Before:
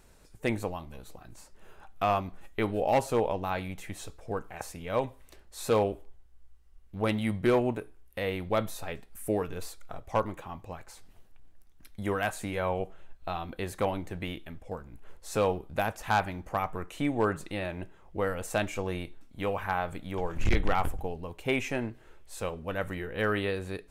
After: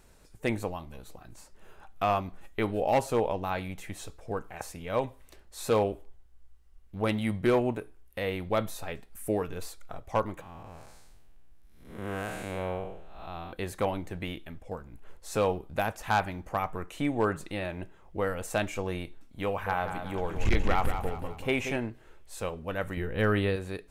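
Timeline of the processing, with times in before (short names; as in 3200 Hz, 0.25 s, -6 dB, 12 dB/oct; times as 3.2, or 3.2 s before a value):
10.41–13.53 time blur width 0.261 s
19.48–21.76 feedback echo 0.184 s, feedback 44%, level -8 dB
22.97–23.56 low shelf 230 Hz +9 dB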